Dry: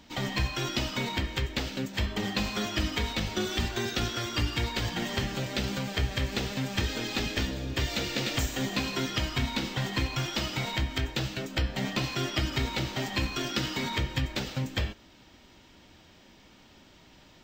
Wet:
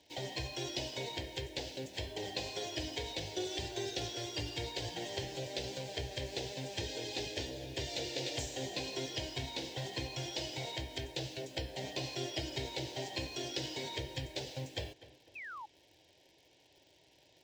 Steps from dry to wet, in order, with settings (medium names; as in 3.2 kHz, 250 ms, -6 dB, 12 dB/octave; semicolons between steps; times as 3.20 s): dynamic bell 2.4 kHz, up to -4 dB, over -44 dBFS, Q 1.3; band-pass 120–7700 Hz; in parallel at -7 dB: bit crusher 8-bit; on the sum: static phaser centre 520 Hz, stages 4; on a send: tape echo 249 ms, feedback 41%, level -14.5 dB, low-pass 2.3 kHz; on the sum: painted sound fall, 15.35–15.66 s, 810–2700 Hz -39 dBFS; trim -6.5 dB